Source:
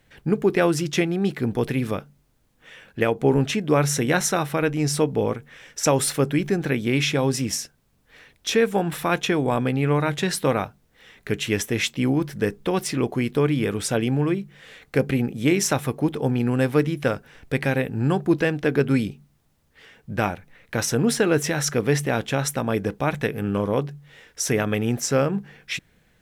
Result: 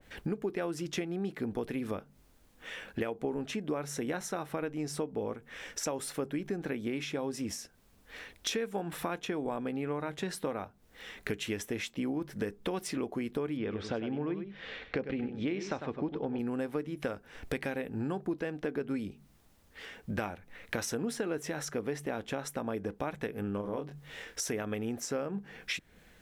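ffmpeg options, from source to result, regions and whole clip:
ffmpeg -i in.wav -filter_complex "[0:a]asettb=1/sr,asplit=3[link_01][link_02][link_03];[link_01]atrim=end=13.574[link_04];[link_02]atrim=start=13.57:end=16.39,asetpts=PTS-STARTPTS,afade=type=in:duration=0.004:curve=qsin,afade=type=out:start_time=2.816:duration=0.004:curve=qsin,lowpass=frequency=4600:width=0.5412,lowpass=frequency=4600:width=1.3066,aecho=1:1:99:0.316,atrim=end_sample=124362[link_05];[link_03]atrim=start=16.386[link_06];[link_04][link_05]acrossfade=duration=0.004:curve1=hsin:curve2=qsin[link_07];[link_07][link_06]acrossfade=duration=0.004:curve1=qsin:curve2=hsin,asettb=1/sr,asplit=3[link_08][link_09][link_10];[link_08]atrim=end=23.614[link_11];[link_09]atrim=start=23.61:end=24.42,asetpts=PTS-STARTPTS,afade=type=in:duration=0.004:curve=qsin,afade=type=out:start_time=0.806:duration=0.004:curve=qsin,asplit=2[link_12][link_13];[link_13]adelay=26,volume=-6dB[link_14];[link_12][link_14]amix=inputs=2:normalize=0,atrim=end_sample=35721,acompressor=threshold=-29dB:ratio=1.5:attack=3.2:release=140:knee=1:detection=peak[link_15];[link_10]atrim=start=24.416[link_16];[link_11][link_15]acrossfade=duration=0.004:curve1=hsin:curve2=qsin[link_17];[link_17][link_16]acrossfade=duration=0.004:curve1=qsin:curve2=hsin,equalizer=frequency=130:width_type=o:width=0.42:gain=-13,acompressor=threshold=-36dB:ratio=5,adynamicequalizer=threshold=0.00224:dfrequency=1600:dqfactor=0.7:tfrequency=1600:tqfactor=0.7:attack=5:release=100:ratio=0.375:range=3:mode=cutabove:tftype=highshelf,volume=3dB" out.wav

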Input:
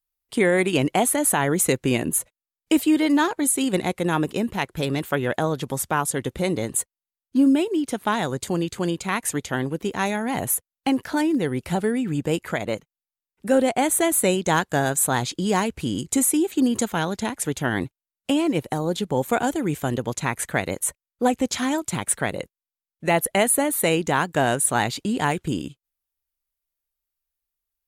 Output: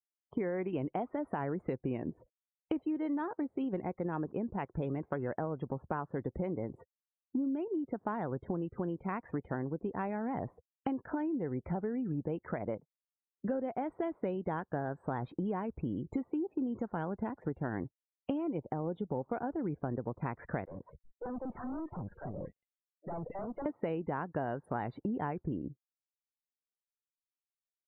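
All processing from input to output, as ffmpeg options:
ffmpeg -i in.wav -filter_complex "[0:a]asettb=1/sr,asplit=3[link_01][link_02][link_03];[link_01]atrim=end=20.654[link_04];[link_02]atrim=start=20.65:end=23.66,asetpts=PTS-STARTPTS,afade=type=in:duration=0.004:curve=qsin,afade=type=out:start_time=3.006:duration=0.004:curve=qsin,equalizer=frequency=7400:width=0.39:gain=-12,acrossover=split=500|2600[link_05][link_06][link_07];[link_05]adelay=40[link_08];[link_07]adelay=220[link_09];[link_08][link_06][link_09]amix=inputs=3:normalize=0,atrim=end_sample=132741,aeval=exprs='(tanh(70.8*val(0)+0.3)-tanh(0.3))/70.8':channel_layout=same[link_10];[link_03]atrim=start=23.656[link_11];[link_04][link_10]acrossfade=duration=0.004:curve1=hsin:curve2=qsin[link_12];[link_12][link_11]acrossfade=duration=0.004:curve1=qsin:curve2=hsin,lowpass=1200,afftdn=noise_reduction=34:noise_floor=-45,acompressor=threshold=-33dB:ratio=6" out.wav

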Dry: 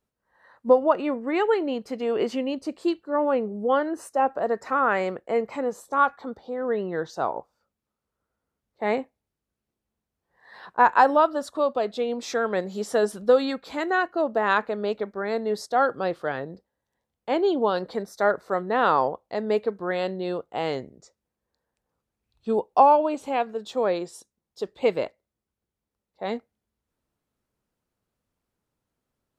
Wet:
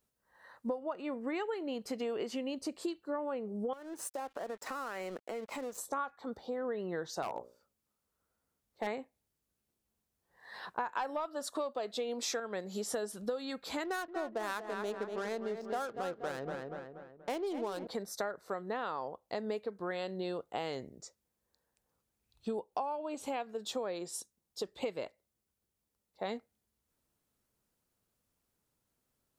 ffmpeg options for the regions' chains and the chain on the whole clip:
ffmpeg -i in.wav -filter_complex "[0:a]asettb=1/sr,asplit=3[link_01][link_02][link_03];[link_01]atrim=end=3.734[link_04];[link_02]atrim=start=3.73:end=5.78,asetpts=PTS-STARTPTS,afade=type=in:duration=0.004:curve=qsin,afade=type=out:start_time=2.046:duration=0.004:curve=qsin,highpass=frequency=170:width=0.5412,highpass=frequency=170:width=1.3066,acompressor=threshold=-33dB:ratio=5:attack=3.2:release=140:knee=1:detection=peak,aeval=exprs='sgn(val(0))*max(abs(val(0))-0.00299,0)':channel_layout=same[link_05];[link_03]atrim=start=5.776[link_06];[link_04][link_05]acrossfade=duration=0.004:curve1=hsin:curve2=qsin[link_07];[link_07][link_06]acrossfade=duration=0.004:curve1=qsin:curve2=hsin,asettb=1/sr,asplit=3[link_08][link_09][link_10];[link_08]atrim=end=7.224[link_11];[link_09]atrim=start=7.22:end=8.87,asetpts=PTS-STARTPTS,afade=type=in:duration=0.004:curve=qsin,afade=type=out:start_time=1.646:duration=0.004:curve=qsin,bandreject=frequency=60:width_type=h:width=6,bandreject=frequency=120:width_type=h:width=6,bandreject=frequency=180:width_type=h:width=6,bandreject=frequency=240:width_type=h:width=6,bandreject=frequency=300:width_type=h:width=6,bandreject=frequency=360:width_type=h:width=6,bandreject=frequency=420:width_type=h:width=6,bandreject=frequency=480:width_type=h:width=6,bandreject=frequency=540:width_type=h:width=6,bandreject=frequency=600:width_type=h:width=6,asoftclip=type=hard:threshold=-21.5dB[link_12];[link_10]atrim=start=8.866[link_13];[link_11][link_12]acrossfade=duration=0.004:curve1=hsin:curve2=qsin[link_14];[link_14][link_13]acrossfade=duration=0.004:curve1=qsin:curve2=hsin,asettb=1/sr,asplit=3[link_15][link_16][link_17];[link_15]atrim=end=10.934[link_18];[link_16]atrim=start=10.93:end=12.4,asetpts=PTS-STARTPTS,afade=type=in:duration=0.004:curve=qsin,afade=type=out:start_time=1.466:duration=0.004:curve=qsin,acontrast=64,equalizer=frequency=81:width=0.75:gain=-13.5[link_19];[link_17]atrim=start=12.396[link_20];[link_18][link_19]acrossfade=duration=0.004:curve1=hsin:curve2=qsin[link_21];[link_21][link_20]acrossfade=duration=0.004:curve1=qsin:curve2=hsin,asettb=1/sr,asplit=3[link_22][link_23][link_24];[link_22]atrim=end=13.844[link_25];[link_23]atrim=start=13.84:end=17.87,asetpts=PTS-STARTPTS,afade=type=in:duration=0.004:curve=qsin,afade=type=out:start_time=4.026:duration=0.004:curve=qsin,adynamicsmooth=sensitivity=5.5:basefreq=780,asplit=2[link_26][link_27];[link_27]adelay=239,lowpass=frequency=2800:poles=1,volume=-8.5dB,asplit=2[link_28][link_29];[link_29]adelay=239,lowpass=frequency=2800:poles=1,volume=0.46,asplit=2[link_30][link_31];[link_31]adelay=239,lowpass=frequency=2800:poles=1,volume=0.46,asplit=2[link_32][link_33];[link_33]adelay=239,lowpass=frequency=2800:poles=1,volume=0.46,asplit=2[link_34][link_35];[link_35]adelay=239,lowpass=frequency=2800:poles=1,volume=0.46[link_36];[link_26][link_28][link_30][link_32][link_34][link_36]amix=inputs=6:normalize=0,atrim=end_sample=177723[link_37];[link_24]atrim=start=17.866[link_38];[link_25][link_37]acrossfade=duration=0.004:curve1=hsin:curve2=qsin[link_39];[link_39][link_38]acrossfade=duration=0.004:curve1=qsin:curve2=hsin,highshelf=frequency=4700:gain=10,acompressor=threshold=-31dB:ratio=10,volume=-2.5dB" out.wav

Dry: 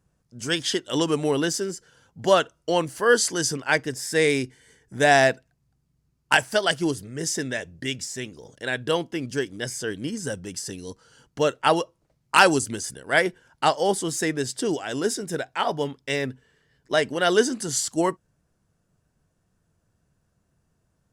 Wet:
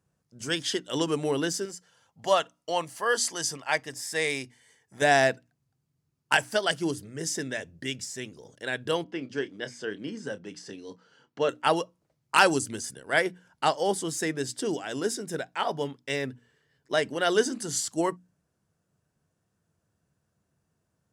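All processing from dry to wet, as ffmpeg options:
ffmpeg -i in.wav -filter_complex "[0:a]asettb=1/sr,asplit=3[link_01][link_02][link_03];[link_01]atrim=end=1.654[link_04];[link_02]atrim=start=1.65:end=5.02,asetpts=PTS-STARTPTS,afade=type=in:duration=0.004:curve=qsin,afade=type=out:start_time=3.366:duration=0.004:curve=qsin,lowshelf=frequency=530:width_type=q:width=1.5:gain=-6.5,bandreject=frequency=1500:width=7.7[link_05];[link_03]atrim=start=5.016[link_06];[link_04][link_05]acrossfade=duration=0.004:curve1=hsin:curve2=qsin[link_07];[link_07][link_06]acrossfade=duration=0.004:curve1=qsin:curve2=hsin,asettb=1/sr,asplit=3[link_08][link_09][link_10];[link_08]atrim=end=9.044[link_11];[link_09]atrim=start=9.04:end=11.49,asetpts=PTS-STARTPTS,afade=type=in:duration=0.004:curve=qsin,afade=type=out:start_time=2.446:duration=0.004:curve=qsin,highpass=180,lowpass=3900,asplit=2[link_12][link_13];[link_13]adelay=29,volume=-13dB[link_14];[link_12][link_14]amix=inputs=2:normalize=0,atrim=end_sample=108045[link_15];[link_10]atrim=start=11.486[link_16];[link_11][link_15]acrossfade=duration=0.004:curve1=hsin:curve2=qsin[link_17];[link_17][link_16]acrossfade=duration=0.004:curve1=qsin:curve2=hsin,highpass=83,bandreject=frequency=60:width_type=h:width=6,bandreject=frequency=120:width_type=h:width=6,bandreject=frequency=180:width_type=h:width=6,bandreject=frequency=240:width_type=h:width=6,bandreject=frequency=300:width_type=h:width=6,volume=-4dB" out.wav

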